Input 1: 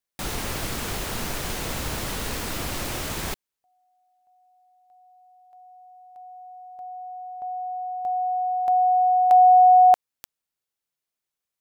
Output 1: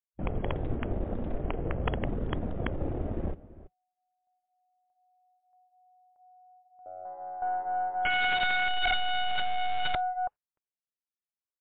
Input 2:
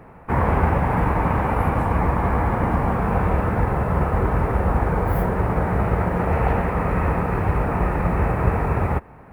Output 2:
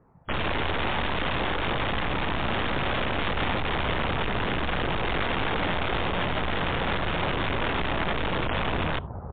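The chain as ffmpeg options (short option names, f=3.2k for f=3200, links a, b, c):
-filter_complex "[0:a]afwtdn=0.0398,lowpass=1.3k,asplit=2[a][b];[b]adelay=332.4,volume=-17dB,highshelf=f=4k:g=-7.48[c];[a][c]amix=inputs=2:normalize=0,asplit=2[d][e];[e]acrusher=bits=3:mix=0:aa=0.000001,volume=-8dB[f];[d][f]amix=inputs=2:normalize=0,flanger=delay=0.6:depth=3.2:regen=-60:speed=0.45:shape=triangular,aeval=exprs='(tanh(17.8*val(0)+0.6)-tanh(0.6))/17.8':c=same,aeval=exprs='(mod(22.4*val(0)+1,2)-1)/22.4':c=same,volume=8.5dB" -ar 8000 -c:a libmp3lame -b:a 40k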